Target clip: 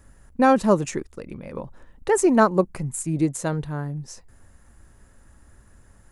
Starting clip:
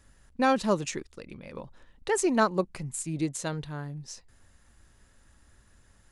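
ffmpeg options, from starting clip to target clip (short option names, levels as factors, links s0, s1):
-af "equalizer=f=3800:w=0.72:g=-11,volume=2.51"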